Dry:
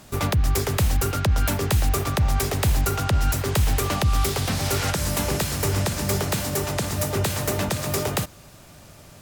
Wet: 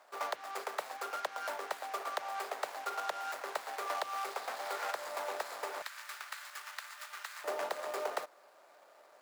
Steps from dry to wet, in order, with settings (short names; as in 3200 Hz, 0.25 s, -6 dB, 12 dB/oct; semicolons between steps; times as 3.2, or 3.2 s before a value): median filter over 15 samples; HPF 590 Hz 24 dB/oct, from 5.82 s 1300 Hz, from 7.44 s 510 Hz; gain -5.5 dB